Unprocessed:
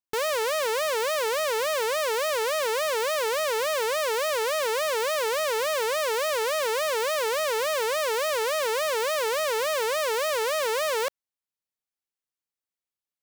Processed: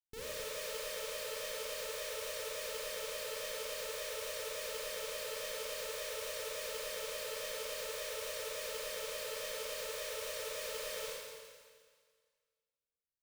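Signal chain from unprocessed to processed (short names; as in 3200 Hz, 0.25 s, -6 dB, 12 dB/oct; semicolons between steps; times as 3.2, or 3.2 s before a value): passive tone stack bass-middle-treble 10-0-1; Schroeder reverb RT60 1.8 s, combs from 29 ms, DRR -7 dB; gain +3 dB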